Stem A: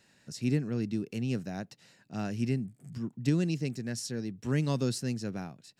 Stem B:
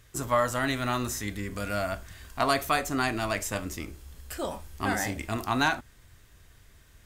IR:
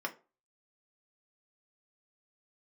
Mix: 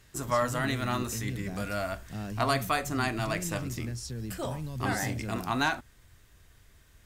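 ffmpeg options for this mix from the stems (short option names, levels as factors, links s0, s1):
-filter_complex "[0:a]equalizer=f=120:t=o:w=0.41:g=11,alimiter=level_in=2:limit=0.0631:level=0:latency=1,volume=0.501,volume=0.944[s0];[1:a]volume=0.75[s1];[s0][s1]amix=inputs=2:normalize=0"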